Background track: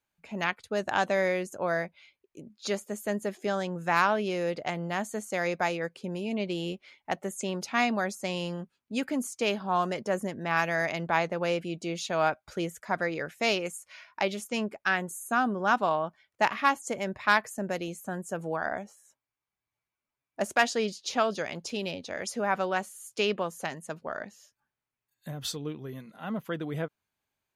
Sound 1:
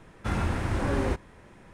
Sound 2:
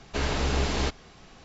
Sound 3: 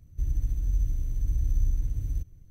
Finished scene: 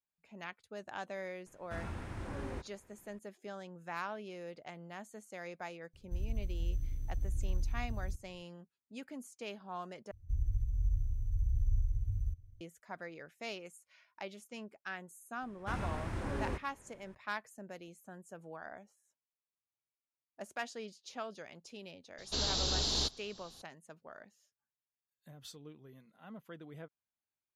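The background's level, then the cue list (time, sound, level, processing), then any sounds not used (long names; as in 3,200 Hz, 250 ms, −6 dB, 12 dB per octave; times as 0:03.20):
background track −16 dB
0:01.46: mix in 1 −14.5 dB
0:05.93: mix in 3 −9 dB
0:10.11: overwrite with 3 −15.5 dB + low shelf with overshoot 130 Hz +8 dB, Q 3
0:15.42: mix in 1 −10.5 dB
0:22.18: mix in 2 −11 dB + high shelf with overshoot 3,000 Hz +10 dB, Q 3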